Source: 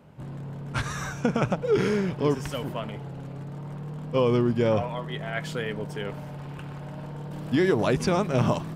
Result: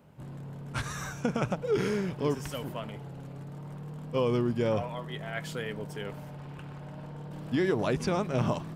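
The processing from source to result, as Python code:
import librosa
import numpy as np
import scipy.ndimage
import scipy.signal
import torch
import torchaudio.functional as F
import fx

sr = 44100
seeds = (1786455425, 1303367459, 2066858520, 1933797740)

y = fx.high_shelf(x, sr, hz=8500.0, db=fx.steps((0.0, 8.0), (6.29, -2.0)))
y = F.gain(torch.from_numpy(y), -5.0).numpy()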